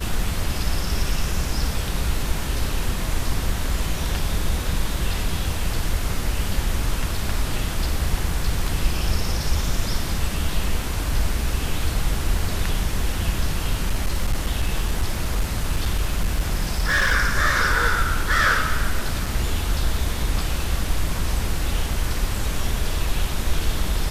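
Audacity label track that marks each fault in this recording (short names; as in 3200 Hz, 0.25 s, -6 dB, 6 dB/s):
13.880000	17.150000	clipped -15.5 dBFS
19.260000	19.260000	gap 4.6 ms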